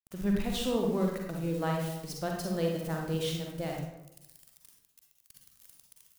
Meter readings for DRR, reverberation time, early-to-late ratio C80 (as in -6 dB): 0.0 dB, 0.90 s, 5.5 dB